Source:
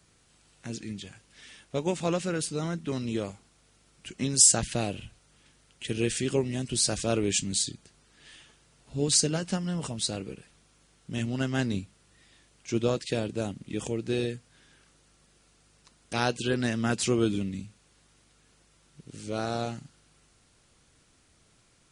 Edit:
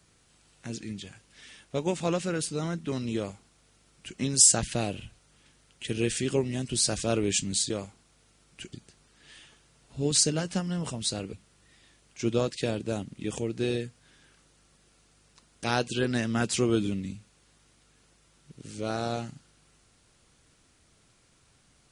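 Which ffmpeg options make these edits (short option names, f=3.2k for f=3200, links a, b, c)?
-filter_complex "[0:a]asplit=4[a][b][c][d];[a]atrim=end=7.702[e];[b]atrim=start=3.158:end=4.192[f];[c]atrim=start=7.698:end=10.302[g];[d]atrim=start=11.818[h];[e][f]acrossfade=d=0.004:c1=hsin:c2=hsin[i];[i][g]acrossfade=d=0.004:c1=hsin:c2=hsin[j];[j][h]acrossfade=d=0.004:c1=hsin:c2=hsin"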